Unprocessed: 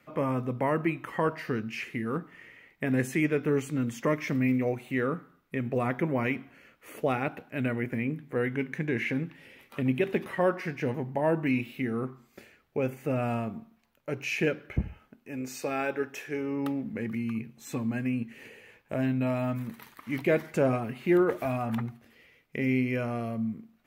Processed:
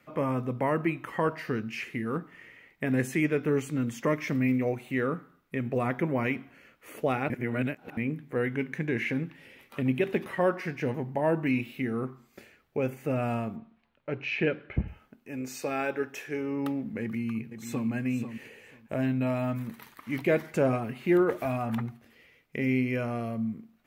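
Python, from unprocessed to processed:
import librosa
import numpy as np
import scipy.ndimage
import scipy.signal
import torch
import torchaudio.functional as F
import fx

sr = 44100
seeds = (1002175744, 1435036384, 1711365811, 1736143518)

y = fx.lowpass(x, sr, hz=3900.0, slope=24, at=(13.56, 14.88))
y = fx.echo_throw(y, sr, start_s=17.02, length_s=0.86, ms=490, feedback_pct=15, wet_db=-9.0)
y = fx.edit(y, sr, fx.reverse_span(start_s=7.3, length_s=0.67), tone=tone)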